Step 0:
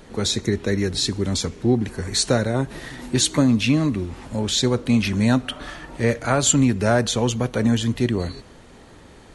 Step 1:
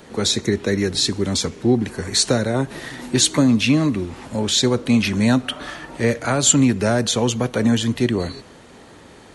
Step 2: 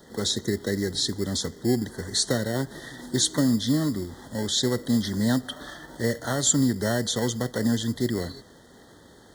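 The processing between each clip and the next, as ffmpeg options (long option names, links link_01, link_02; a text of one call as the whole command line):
ffmpeg -i in.wav -filter_complex "[0:a]highpass=frequency=140:poles=1,acrossover=split=380|3000[link_01][link_02][link_03];[link_02]acompressor=threshold=-23dB:ratio=6[link_04];[link_01][link_04][link_03]amix=inputs=3:normalize=0,volume=3.5dB" out.wav
ffmpeg -i in.wav -filter_complex "[0:a]acrossover=split=1100[link_01][link_02];[link_01]acrusher=samples=18:mix=1:aa=0.000001[link_03];[link_03][link_02]amix=inputs=2:normalize=0,asuperstop=centerf=2500:order=20:qfactor=2.3,volume=-6.5dB" out.wav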